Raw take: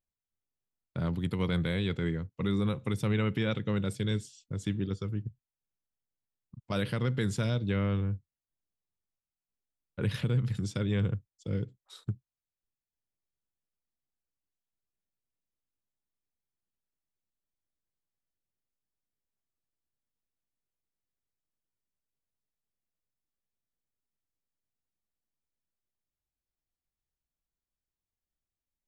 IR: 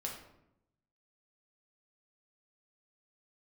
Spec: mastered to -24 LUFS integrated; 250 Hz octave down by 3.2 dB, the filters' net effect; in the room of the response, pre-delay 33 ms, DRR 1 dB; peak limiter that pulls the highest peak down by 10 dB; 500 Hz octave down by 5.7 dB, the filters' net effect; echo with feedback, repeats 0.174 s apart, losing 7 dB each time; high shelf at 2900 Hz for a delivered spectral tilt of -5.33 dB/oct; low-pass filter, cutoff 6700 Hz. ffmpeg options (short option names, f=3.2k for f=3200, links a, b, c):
-filter_complex "[0:a]lowpass=6.7k,equalizer=f=250:t=o:g=-3.5,equalizer=f=500:t=o:g=-6,highshelf=f=2.9k:g=8,alimiter=level_in=3.5dB:limit=-24dB:level=0:latency=1,volume=-3.5dB,aecho=1:1:174|348|522|696|870:0.447|0.201|0.0905|0.0407|0.0183,asplit=2[a][b];[1:a]atrim=start_sample=2205,adelay=33[c];[b][c]afir=irnorm=-1:irlink=0,volume=-1dB[d];[a][d]amix=inputs=2:normalize=0,volume=10.5dB"